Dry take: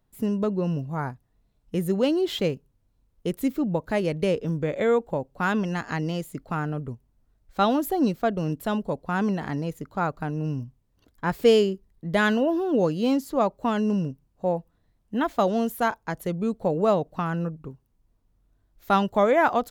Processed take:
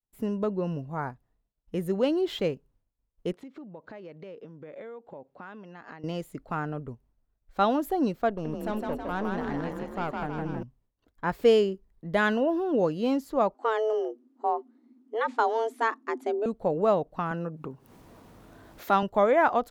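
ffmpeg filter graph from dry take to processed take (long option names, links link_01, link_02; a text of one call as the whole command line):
ffmpeg -i in.wav -filter_complex "[0:a]asettb=1/sr,asplit=3[link_01][link_02][link_03];[link_01]atrim=end=3.324[link_04];[link_02]atrim=start=3.32:end=6.04,asetpts=PTS-STARTPTS,afade=type=in:duration=0.004:curve=qsin,afade=type=out:start_time=2.716:duration=0.004:curve=qsin,acompressor=threshold=-36dB:ratio=12:attack=3.2:release=140:knee=1:detection=peak,highpass=160,lowpass=4500[link_05];[link_03]atrim=start=6.036[link_06];[link_04][link_05]acrossfade=duration=0.004:curve1=hsin:curve2=qsin[link_07];[link_07][link_06]acrossfade=duration=0.004:curve1=qsin:curve2=hsin,asettb=1/sr,asplit=3[link_08][link_09][link_10];[link_08]atrim=end=8.294[link_11];[link_09]atrim=start=8.29:end=10.63,asetpts=PTS-STARTPTS,afade=type=in:duration=0.004:curve=qsin,afade=type=out:start_time=2.336:duration=0.004:curve=qsin,aeval=exprs='(tanh(14.1*val(0)+0.5)-tanh(0.5))/14.1':channel_layout=same,asplit=9[link_12][link_13][link_14][link_15][link_16][link_17][link_18][link_19][link_20];[link_13]adelay=160,afreqshift=34,volume=-3dB[link_21];[link_14]adelay=320,afreqshift=68,volume=-8.2dB[link_22];[link_15]adelay=480,afreqshift=102,volume=-13.4dB[link_23];[link_16]adelay=640,afreqshift=136,volume=-18.6dB[link_24];[link_17]adelay=800,afreqshift=170,volume=-23.8dB[link_25];[link_18]adelay=960,afreqshift=204,volume=-29dB[link_26];[link_19]adelay=1120,afreqshift=238,volume=-34.2dB[link_27];[link_20]adelay=1280,afreqshift=272,volume=-39.3dB[link_28];[link_12][link_21][link_22][link_23][link_24][link_25][link_26][link_27][link_28]amix=inputs=9:normalize=0,atrim=end_sample=103194[link_29];[link_10]atrim=start=10.626[link_30];[link_11][link_29]acrossfade=duration=0.004:curve1=hsin:curve2=qsin[link_31];[link_31][link_30]acrossfade=duration=0.004:curve1=qsin:curve2=hsin,asettb=1/sr,asplit=3[link_32][link_33][link_34];[link_32]atrim=end=13.544[link_35];[link_33]atrim=start=13.54:end=16.46,asetpts=PTS-STARTPTS,afade=type=in:duration=0.004:curve=qsin,afade=type=out:start_time=2.916:duration=0.004:curve=qsin,lowpass=frequency=8900:width=0.5412,lowpass=frequency=8900:width=1.3066,asubboost=boost=9.5:cutoff=110,afreqshift=220[link_36];[link_34]atrim=start=16.456[link_37];[link_35][link_36]acrossfade=duration=0.004:curve1=hsin:curve2=qsin[link_38];[link_38][link_37]acrossfade=duration=0.004:curve1=qsin:curve2=hsin,asettb=1/sr,asplit=3[link_39][link_40][link_41];[link_39]atrim=end=17.314[link_42];[link_40]atrim=start=17.31:end=19.03,asetpts=PTS-STARTPTS,afade=type=in:duration=0.004:curve=qsin,afade=type=out:start_time=1.716:duration=0.004:curve=qsin,highpass=150,acompressor=mode=upward:threshold=-23dB:ratio=2.5:attack=3.2:release=140:knee=2.83:detection=peak[link_43];[link_41]atrim=start=19.026[link_44];[link_42][link_43]acrossfade=duration=0.004:curve1=hsin:curve2=qsin[link_45];[link_45][link_44]acrossfade=duration=0.004:curve1=qsin:curve2=hsin,equalizer=frequency=120:width=0.47:gain=-6.5,agate=range=-33dB:threshold=-59dB:ratio=3:detection=peak,highshelf=frequency=3000:gain=-9.5" out.wav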